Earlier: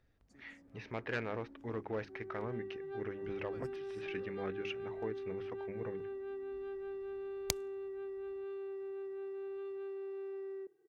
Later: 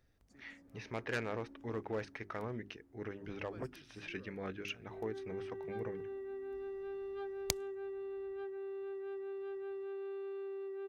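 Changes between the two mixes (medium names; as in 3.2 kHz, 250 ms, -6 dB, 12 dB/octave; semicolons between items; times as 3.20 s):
speech: remove low-pass 4 kHz 12 dB/octave; second sound: entry +2.80 s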